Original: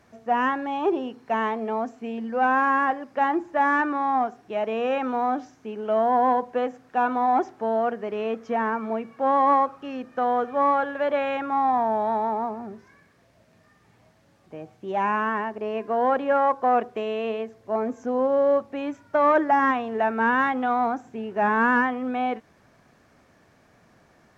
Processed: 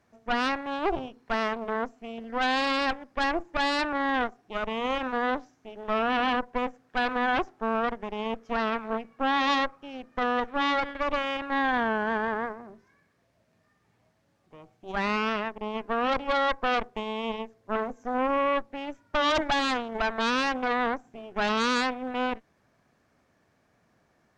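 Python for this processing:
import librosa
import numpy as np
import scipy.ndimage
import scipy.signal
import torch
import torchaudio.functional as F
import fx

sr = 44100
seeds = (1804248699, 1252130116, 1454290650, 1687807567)

y = fx.cheby_harmonics(x, sr, harmonics=(6, 7), levels_db=(-8, -31), full_scale_db=-9.5)
y = y * 10.0 ** (-7.5 / 20.0)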